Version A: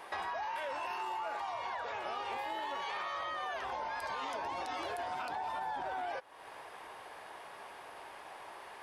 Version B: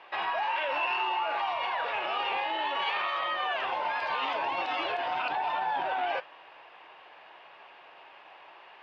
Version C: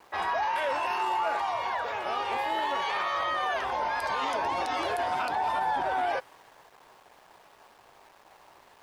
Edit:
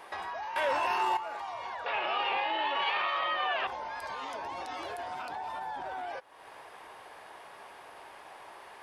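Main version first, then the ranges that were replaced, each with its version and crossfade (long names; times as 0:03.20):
A
0:00.56–0:01.17: punch in from C
0:01.86–0:03.67: punch in from B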